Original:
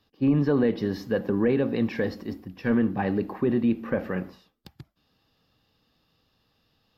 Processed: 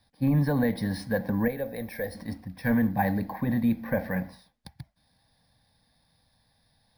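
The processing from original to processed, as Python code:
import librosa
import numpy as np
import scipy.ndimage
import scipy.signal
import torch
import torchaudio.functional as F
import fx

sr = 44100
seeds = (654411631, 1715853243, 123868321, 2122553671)

y = fx.fixed_phaser(x, sr, hz=1900.0, stages=8)
y = np.repeat(y[::3], 3)[:len(y)]
y = fx.graphic_eq_10(y, sr, hz=(125, 250, 500, 1000, 2000, 4000), db=(-11, -10, 4, -10, -3, -7), at=(1.48, 2.15))
y = F.gain(torch.from_numpy(y), 4.0).numpy()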